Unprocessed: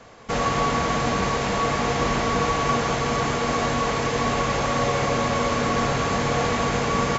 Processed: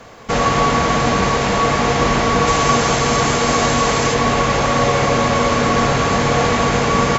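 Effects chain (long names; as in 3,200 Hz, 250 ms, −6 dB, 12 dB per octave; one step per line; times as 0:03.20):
0:02.47–0:04.14: high-shelf EQ 6,600 Hz +11.5 dB
bit reduction 12 bits
level +7 dB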